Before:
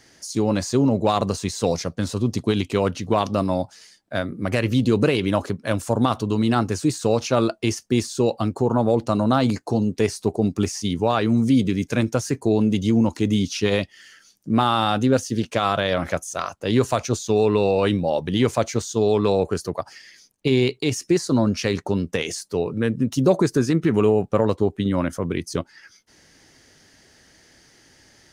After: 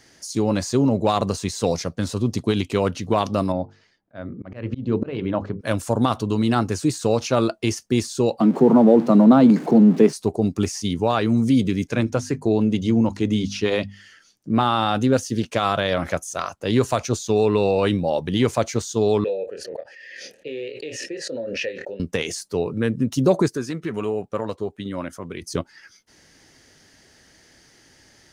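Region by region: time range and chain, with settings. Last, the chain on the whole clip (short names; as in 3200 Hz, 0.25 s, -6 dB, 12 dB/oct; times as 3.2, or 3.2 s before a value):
3.52–5.61 notches 50/100/150/200/250/300/350/400/450/500 Hz + auto swell 0.194 s + tape spacing loss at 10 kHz 34 dB
8.4–10.13 zero-crossing step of -30.5 dBFS + steep high-pass 150 Hz 72 dB/oct + tilt -4 dB/oct
11.87–14.95 high shelf 7900 Hz -11.5 dB + notches 50/100/150/200/250 Hz
19.24–22 vowel filter e + doubler 26 ms -7 dB + backwards sustainer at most 27 dB/s
23.48–25.42 low shelf 260 Hz -8.5 dB + notch 820 Hz, Q 20 + flange 1.3 Hz, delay 0.2 ms, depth 1.7 ms, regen -70%
whole clip: dry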